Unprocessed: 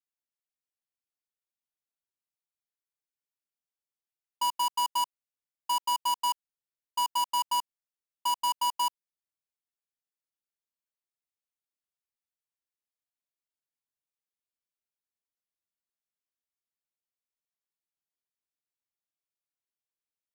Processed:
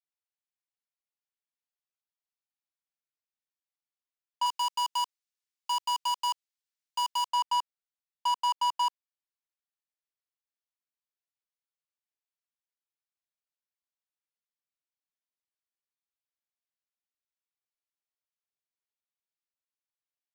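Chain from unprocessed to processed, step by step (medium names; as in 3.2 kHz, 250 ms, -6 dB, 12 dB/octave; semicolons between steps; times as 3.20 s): high-pass 200 Hz 24 dB/octave; saturation -30 dBFS, distortion -11 dB; 4.46–7.29 s: tilt EQ +4 dB/octave; waveshaping leveller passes 2; three-band isolator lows -23 dB, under 510 Hz, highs -15 dB, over 7 kHz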